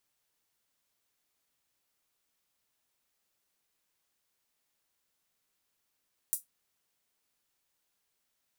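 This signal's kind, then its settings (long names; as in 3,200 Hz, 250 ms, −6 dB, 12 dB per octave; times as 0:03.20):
closed synth hi-hat, high-pass 9,000 Hz, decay 0.15 s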